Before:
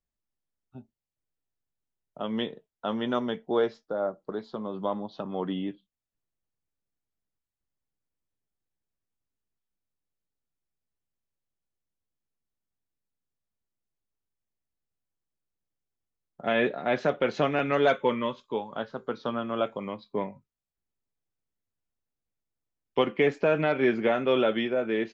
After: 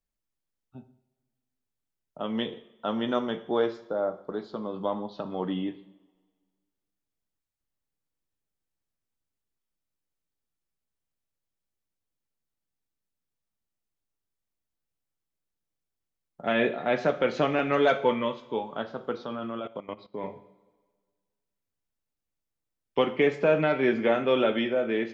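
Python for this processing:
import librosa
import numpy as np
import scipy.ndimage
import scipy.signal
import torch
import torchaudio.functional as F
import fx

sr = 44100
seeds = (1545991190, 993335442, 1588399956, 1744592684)

y = fx.rev_double_slope(x, sr, seeds[0], early_s=0.59, late_s=1.7, knee_db=-18, drr_db=8.5)
y = fx.level_steps(y, sr, step_db=17, at=(19.25, 20.24))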